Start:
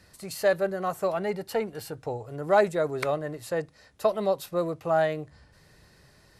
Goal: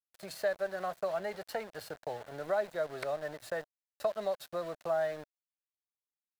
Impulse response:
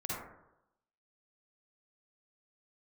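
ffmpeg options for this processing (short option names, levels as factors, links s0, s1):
-filter_complex "[0:a]acrossover=split=160|820[s0][s1][s2];[s0]acompressor=threshold=0.00251:ratio=4[s3];[s1]acompressor=threshold=0.0141:ratio=4[s4];[s2]acompressor=threshold=0.0126:ratio=4[s5];[s3][s4][s5]amix=inputs=3:normalize=0,aeval=exprs='val(0)*gte(abs(val(0)),0.0075)':c=same,equalizer=f=630:t=o:w=0.67:g=11,equalizer=f=1600:t=o:w=0.67:g=8,equalizer=f=4000:t=o:w=0.67:g=5,volume=0.422"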